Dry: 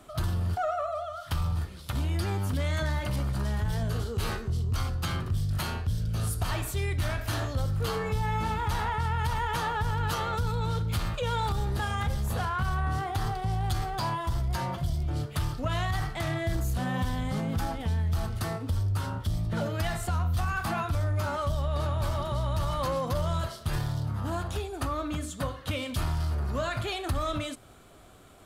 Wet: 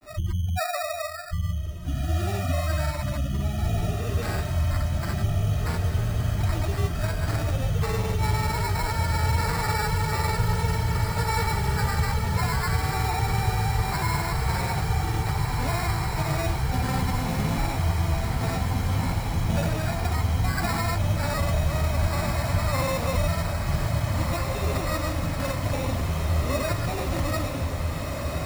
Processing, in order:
gate on every frequency bin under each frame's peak −20 dB strong
mains-hum notches 60/120/180/240/300/360 Hz
granular cloud, pitch spread up and down by 0 semitones
decimation without filtering 14×
feedback delay with all-pass diffusion 1,747 ms, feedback 75%, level −4 dB
level +3.5 dB

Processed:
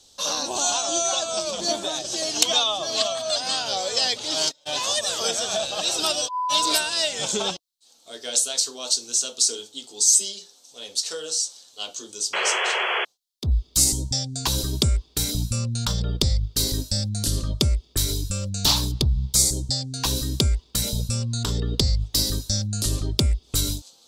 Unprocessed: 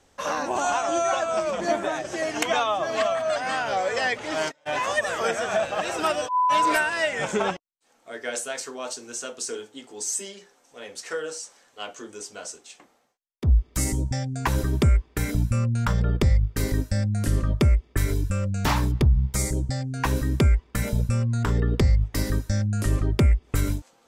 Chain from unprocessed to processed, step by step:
high shelf with overshoot 2,800 Hz +12.5 dB, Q 3
sound drawn into the spectrogram noise, 0:12.33–0:13.05, 360–3,400 Hz −21 dBFS
level −3 dB

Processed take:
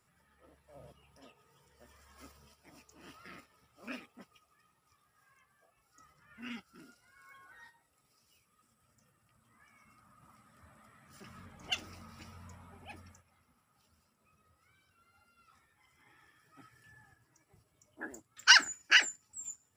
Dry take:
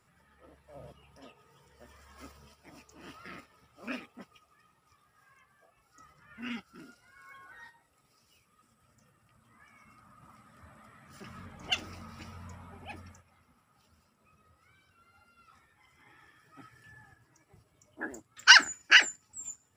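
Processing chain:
high-shelf EQ 5,800 Hz +6 dB
level −5.5 dB

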